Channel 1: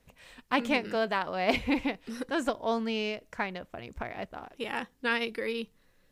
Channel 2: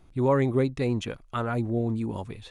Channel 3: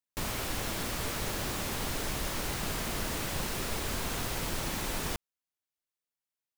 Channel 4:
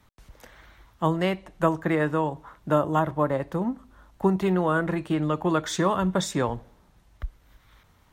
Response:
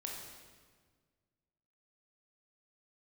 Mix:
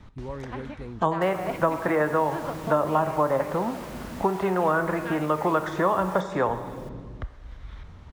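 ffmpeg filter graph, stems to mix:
-filter_complex "[0:a]lowpass=frequency=3400:poles=1,volume=-4.5dB[link_01];[1:a]volume=-16dB[link_02];[2:a]highpass=62,adelay=1050,volume=-5dB,asplit=2[link_03][link_04];[link_04]volume=-17dB[link_05];[3:a]deesser=0.8,lowpass=5400,volume=3dB,asplit=3[link_06][link_07][link_08];[link_07]volume=-5.5dB[link_09];[link_08]apad=whole_len=269704[link_10];[link_01][link_10]sidechaingate=range=-33dB:threshold=-46dB:ratio=16:detection=peak[link_11];[4:a]atrim=start_sample=2205[link_12];[link_09][link_12]afir=irnorm=-1:irlink=0[link_13];[link_05]aecho=0:1:680:1[link_14];[link_11][link_02][link_03][link_06][link_13][link_14]amix=inputs=6:normalize=0,lowshelf=frequency=500:gain=9.5,acrossover=split=540|2000|5500[link_15][link_16][link_17][link_18];[link_15]acompressor=threshold=-35dB:ratio=4[link_19];[link_16]acompressor=threshold=-20dB:ratio=4[link_20];[link_17]acompressor=threshold=-53dB:ratio=4[link_21];[link_18]acompressor=threshold=-52dB:ratio=4[link_22];[link_19][link_20][link_21][link_22]amix=inputs=4:normalize=0"

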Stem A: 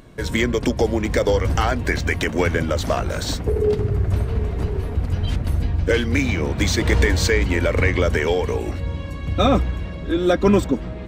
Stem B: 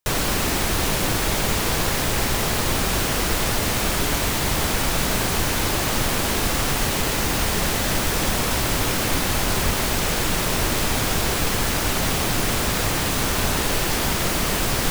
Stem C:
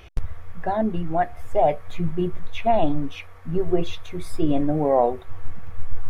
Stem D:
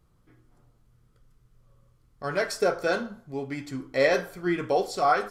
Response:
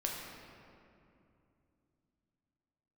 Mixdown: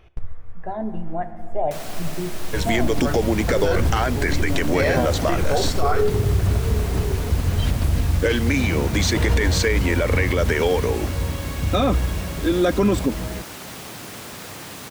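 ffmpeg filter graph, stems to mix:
-filter_complex "[0:a]adelay=2350,volume=1.5dB[link_01];[1:a]highpass=110,adelay=1650,volume=-13dB[link_02];[2:a]highshelf=frequency=2300:gain=-9,volume=-7.5dB,asplit=3[link_03][link_04][link_05];[link_04]volume=-8dB[link_06];[3:a]adelay=800,volume=3dB[link_07];[link_05]apad=whole_len=269282[link_08];[link_07][link_08]sidechaingate=range=-33dB:threshold=-34dB:ratio=16:detection=peak[link_09];[4:a]atrim=start_sample=2205[link_10];[link_06][link_10]afir=irnorm=-1:irlink=0[link_11];[link_01][link_02][link_03][link_09][link_11]amix=inputs=5:normalize=0,alimiter=limit=-10dB:level=0:latency=1:release=29"

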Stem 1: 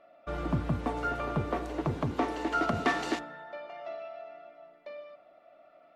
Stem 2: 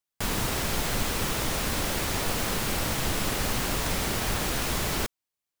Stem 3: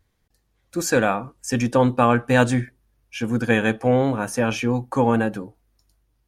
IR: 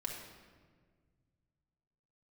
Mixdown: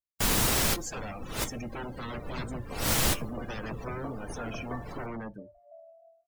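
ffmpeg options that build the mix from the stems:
-filter_complex "[0:a]lowpass=1500,aecho=1:1:1.9:0.52,adelay=1850,volume=-11.5dB[link_01];[1:a]volume=0.5dB,asplit=2[link_02][link_03];[link_03]volume=-19dB[link_04];[2:a]equalizer=frequency=980:width_type=o:width=0.3:gain=-11.5,aeval=exprs='0.112*(abs(mod(val(0)/0.112+3,4)-2)-1)':channel_layout=same,volume=-13.5dB,asplit=2[link_05][link_06];[link_06]apad=whole_len=246994[link_07];[link_02][link_07]sidechaincompress=threshold=-57dB:ratio=20:attack=9:release=194[link_08];[3:a]atrim=start_sample=2205[link_09];[link_04][link_09]afir=irnorm=-1:irlink=0[link_10];[link_01][link_08][link_05][link_10]amix=inputs=4:normalize=0,afftdn=noise_reduction=31:noise_floor=-40,highshelf=frequency=5000:gain=9"

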